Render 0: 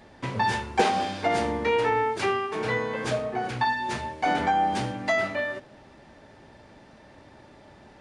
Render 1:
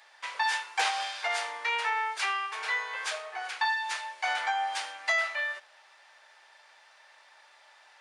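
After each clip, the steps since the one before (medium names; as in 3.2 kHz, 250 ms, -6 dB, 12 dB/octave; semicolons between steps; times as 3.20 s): Bessel high-pass 1.3 kHz, order 4; trim +2 dB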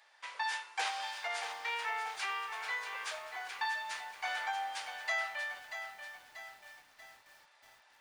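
bit-crushed delay 636 ms, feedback 55%, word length 8-bit, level -8.5 dB; trim -7.5 dB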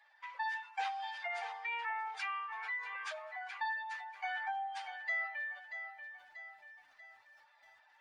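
spectral contrast enhancement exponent 1.8; trim -1.5 dB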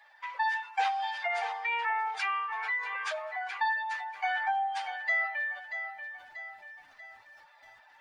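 bass shelf 400 Hz +9 dB; trim +7 dB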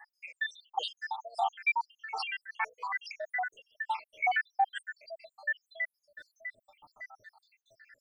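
random holes in the spectrogram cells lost 84%; trim +6.5 dB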